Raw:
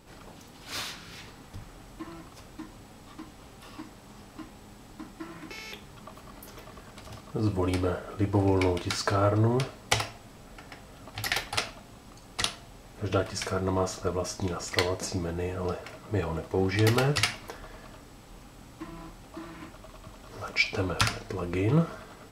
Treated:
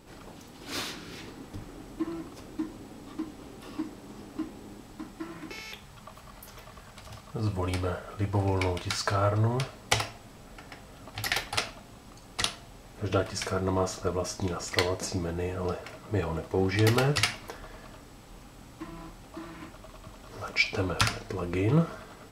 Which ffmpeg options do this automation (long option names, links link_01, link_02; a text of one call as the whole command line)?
ffmpeg -i in.wav -af "asetnsamples=nb_out_samples=441:pad=0,asendcmd='0.61 equalizer g 10;4.8 equalizer g 2.5;5.61 equalizer g -7.5;9.73 equalizer g 0',equalizer=frequency=320:width_type=o:width=1.1:gain=3.5" out.wav